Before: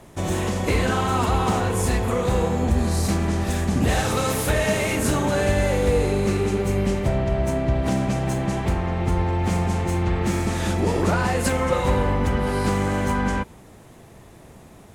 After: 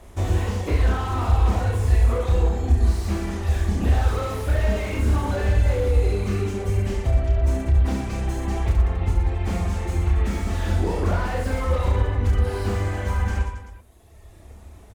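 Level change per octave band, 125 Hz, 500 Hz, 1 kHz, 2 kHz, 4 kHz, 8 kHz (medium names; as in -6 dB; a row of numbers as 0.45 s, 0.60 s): +2.0 dB, -5.5 dB, -5.5 dB, -5.5 dB, -6.5 dB, -10.0 dB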